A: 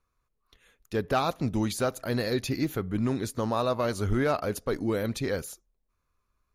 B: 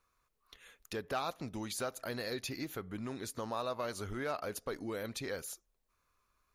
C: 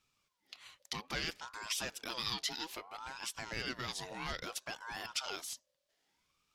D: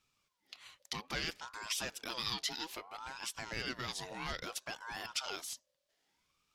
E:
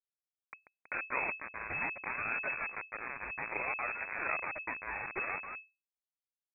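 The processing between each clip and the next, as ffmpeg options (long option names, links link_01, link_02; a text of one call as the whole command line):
ffmpeg -i in.wav -af "acompressor=threshold=-45dB:ratio=2,lowshelf=frequency=370:gain=-10,volume=4.5dB" out.wav
ffmpeg -i in.wav -af "equalizer=frequency=4200:width=0.62:gain=14.5,aeval=exprs='val(0)*sin(2*PI*910*n/s+910*0.4/0.61*sin(2*PI*0.61*n/s))':channel_layout=same,volume=-3.5dB" out.wav
ffmpeg -i in.wav -af anull out.wav
ffmpeg -i in.wav -af "acrusher=bits=4:dc=4:mix=0:aa=0.000001,lowpass=frequency=2200:width_type=q:width=0.5098,lowpass=frequency=2200:width_type=q:width=0.6013,lowpass=frequency=2200:width_type=q:width=0.9,lowpass=frequency=2200:width_type=q:width=2.563,afreqshift=-2600,volume=9dB" out.wav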